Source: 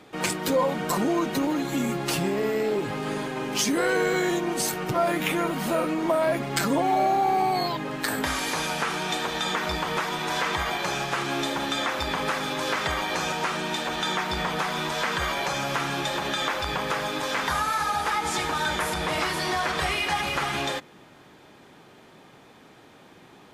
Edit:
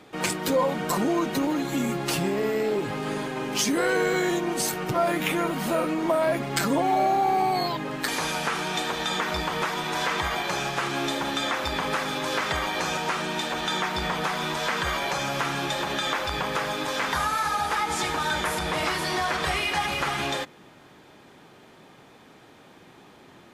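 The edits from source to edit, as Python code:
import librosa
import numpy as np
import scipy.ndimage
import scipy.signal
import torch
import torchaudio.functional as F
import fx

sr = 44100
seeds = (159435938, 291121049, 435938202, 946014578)

y = fx.edit(x, sr, fx.cut(start_s=8.08, length_s=0.35), tone=tone)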